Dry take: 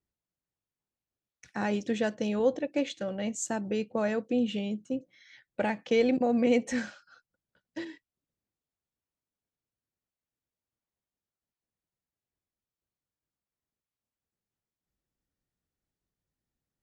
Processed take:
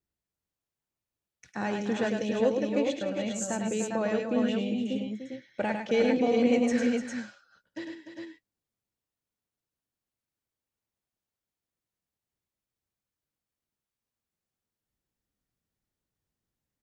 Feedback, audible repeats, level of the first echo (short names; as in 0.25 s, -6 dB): no steady repeat, 4, -5.5 dB